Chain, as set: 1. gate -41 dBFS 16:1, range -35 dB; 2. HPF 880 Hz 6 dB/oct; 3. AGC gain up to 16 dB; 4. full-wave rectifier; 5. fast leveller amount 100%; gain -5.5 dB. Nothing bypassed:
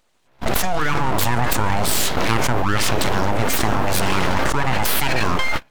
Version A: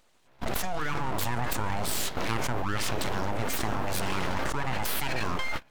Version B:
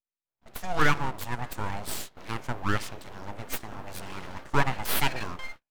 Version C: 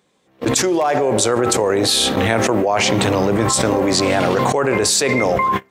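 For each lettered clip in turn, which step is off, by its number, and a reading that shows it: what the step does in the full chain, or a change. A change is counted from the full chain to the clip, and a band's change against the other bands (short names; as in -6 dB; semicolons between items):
3, loudness change -10.5 LU; 5, crest factor change +5.5 dB; 4, 125 Hz band -6.0 dB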